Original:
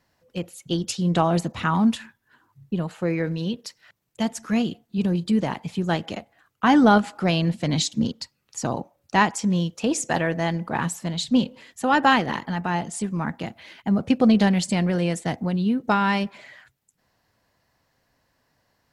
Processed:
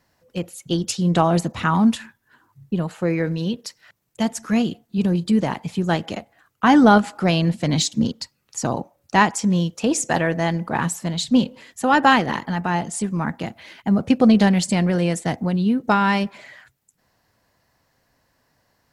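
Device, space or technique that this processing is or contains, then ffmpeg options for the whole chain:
exciter from parts: -filter_complex "[0:a]asplit=2[s0][s1];[s1]highpass=3100,asoftclip=type=tanh:threshold=0.0794,highpass=2300,volume=0.266[s2];[s0][s2]amix=inputs=2:normalize=0,volume=1.41"

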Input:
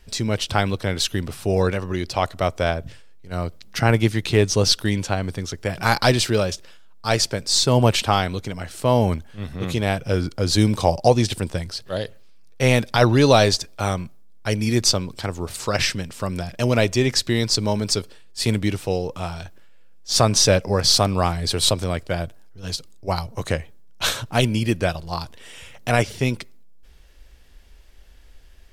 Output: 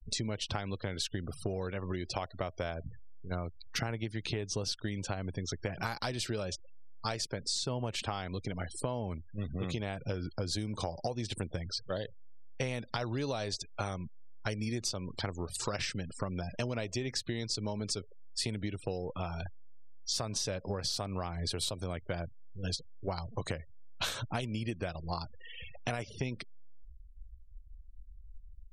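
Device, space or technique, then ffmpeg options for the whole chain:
serial compression, leveller first: -af "afftfilt=real='re*gte(hypot(re,im),0.0178)':imag='im*gte(hypot(re,im),0.0178)':win_size=1024:overlap=0.75,acompressor=threshold=0.112:ratio=2.5,acompressor=threshold=0.0282:ratio=6,volume=0.841"

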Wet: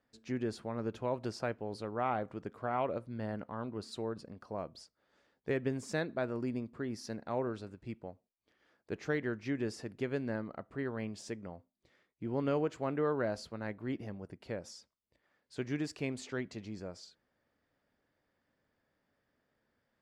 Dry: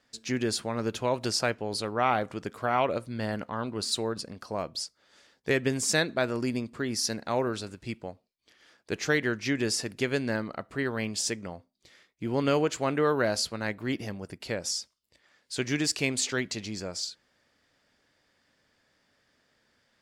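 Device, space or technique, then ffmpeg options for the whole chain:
through cloth: -af "highshelf=f=2500:g=-17,volume=0.501"

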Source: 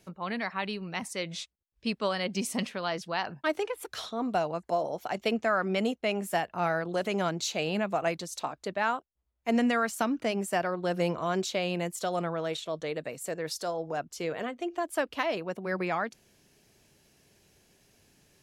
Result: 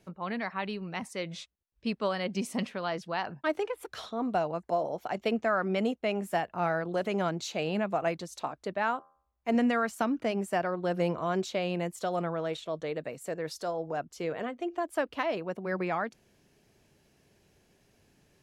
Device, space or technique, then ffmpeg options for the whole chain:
behind a face mask: -filter_complex "[0:a]asettb=1/sr,asplit=3[s0][s1][s2];[s0]atrim=end=8.964[s3];[s1]atrim=start=8.96:end=9.55,asetpts=PTS-STARTPTS,afade=t=in:d=0.004:c=qsin,afade=t=out:st=0.586:d=0.004:c=qsin,bandreject=f=79.68:t=h:w=4,bandreject=f=159.36:t=h:w=4,bandreject=f=239.04:t=h:w=4,bandreject=f=318.72:t=h:w=4,bandreject=f=398.4:t=h:w=4,bandreject=f=478.08:t=h:w=4,bandreject=f=557.76:t=h:w=4,bandreject=f=637.44:t=h:w=4,bandreject=f=717.12:t=h:w=4,bandreject=f=796.8:t=h:w=4,bandreject=f=876.48:t=h:w=4,bandreject=f=956.16:t=h:w=4,bandreject=f=1035.84:t=h:w=4,bandreject=f=1115.52:t=h:w=4,bandreject=f=1195.2:t=h:w=4,bandreject=f=1274.88:t=h:w=4,bandreject=f=1354.56:t=h:w=4,bandreject=f=1434.24:t=h:w=4,bandreject=f=1513.92:t=h:w=4,bandreject=f=1593.6:t=h:w=4,bandreject=f=1673.28:t=h:w=4,bandreject=f=1752.96:t=h:w=4,bandreject=f=1832.64:t=h:w=4,bandreject=f=1912.32:t=h:w=4,bandreject=f=1992:t=h:w=4[s4];[s2]atrim=start=9.546[s5];[s3][s4]acrossfade=d=0.004:c1=hsin:c2=qsin[s6];[s6][s5]acrossfade=d=0.004:c1=qsin:c2=hsin,highshelf=f=2900:g=-8"

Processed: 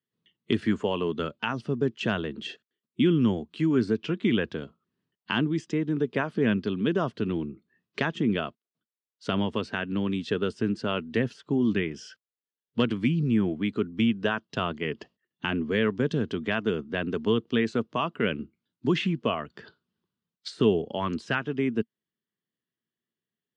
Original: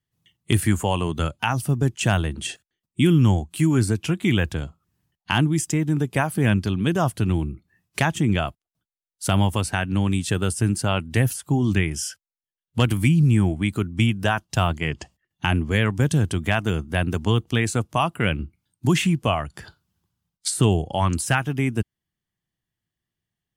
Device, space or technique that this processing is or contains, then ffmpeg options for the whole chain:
kitchen radio: -af "highpass=210,equalizer=f=230:t=q:w=4:g=7,equalizer=f=430:t=q:w=4:g=8,equalizer=f=790:t=q:w=4:g=-9,equalizer=f=2300:t=q:w=4:g=-4,lowpass=f=4300:w=0.5412,lowpass=f=4300:w=1.3066,volume=0.631"

